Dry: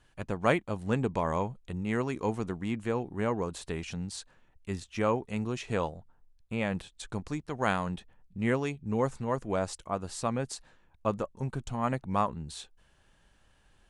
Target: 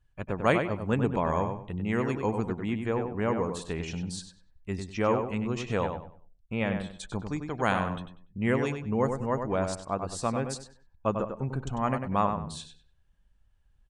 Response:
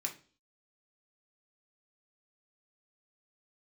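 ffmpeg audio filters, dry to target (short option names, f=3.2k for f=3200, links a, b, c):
-filter_complex "[0:a]afftdn=nr=18:nf=-54,asplit=2[a][b];[b]adelay=97,lowpass=f=3.3k:p=1,volume=-6dB,asplit=2[c][d];[d]adelay=97,lowpass=f=3.3k:p=1,volume=0.29,asplit=2[e][f];[f]adelay=97,lowpass=f=3.3k:p=1,volume=0.29,asplit=2[g][h];[h]adelay=97,lowpass=f=3.3k:p=1,volume=0.29[i];[a][c][e][g][i]amix=inputs=5:normalize=0,volume=1.5dB"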